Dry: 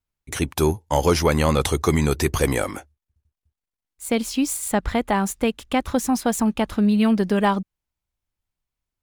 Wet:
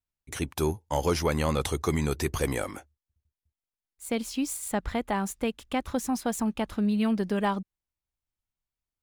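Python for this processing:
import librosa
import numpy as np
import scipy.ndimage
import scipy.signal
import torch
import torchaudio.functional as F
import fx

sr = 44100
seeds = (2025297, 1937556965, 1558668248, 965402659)

y = np.clip(x, -10.0 ** (-7.5 / 20.0), 10.0 ** (-7.5 / 20.0))
y = y * librosa.db_to_amplitude(-7.5)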